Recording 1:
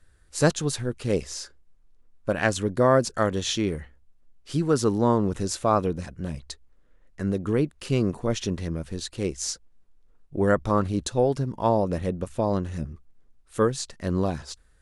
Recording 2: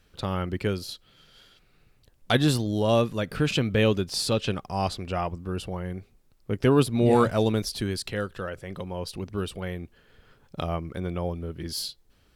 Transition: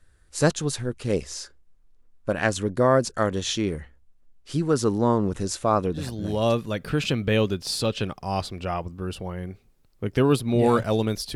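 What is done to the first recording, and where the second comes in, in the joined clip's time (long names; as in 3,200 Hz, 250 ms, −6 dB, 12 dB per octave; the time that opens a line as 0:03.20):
recording 1
0:06.27: continue with recording 2 from 0:02.74, crossfade 0.74 s equal-power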